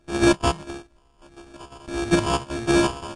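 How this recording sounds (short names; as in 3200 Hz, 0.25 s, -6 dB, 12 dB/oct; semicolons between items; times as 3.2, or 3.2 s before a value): a buzz of ramps at a fixed pitch in blocks of 128 samples; phasing stages 8, 1.6 Hz, lowest notch 420–1200 Hz; aliases and images of a low sample rate 2000 Hz, jitter 0%; Vorbis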